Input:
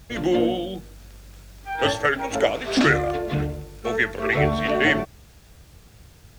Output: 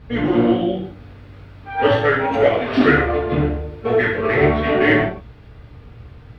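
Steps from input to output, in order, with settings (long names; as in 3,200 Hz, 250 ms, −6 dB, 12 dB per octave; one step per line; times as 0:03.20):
in parallel at −6 dB: wave folding −22 dBFS
on the sum: high-frequency loss of the air 430 metres
reverb whose tail is shaped and stops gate 190 ms falling, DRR −5 dB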